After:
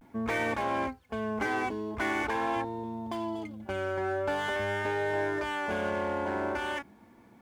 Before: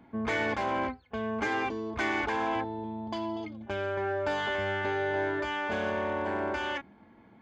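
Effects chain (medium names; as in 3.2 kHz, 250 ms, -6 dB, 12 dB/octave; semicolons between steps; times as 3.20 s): median filter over 9 samples; word length cut 12-bit, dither none; vibrato 0.45 Hz 58 cents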